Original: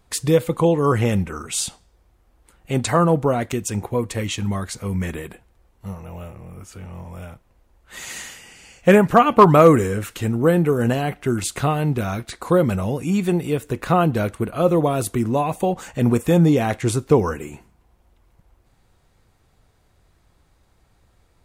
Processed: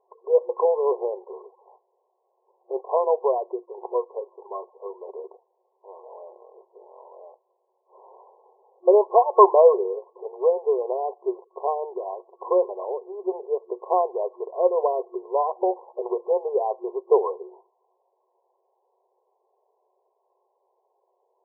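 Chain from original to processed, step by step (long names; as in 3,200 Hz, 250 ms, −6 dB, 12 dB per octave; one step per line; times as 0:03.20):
brick-wall band-pass 360–1,100 Hz
0:06.83–0:07.99: high-frequency loss of the air 370 metres
level −1 dB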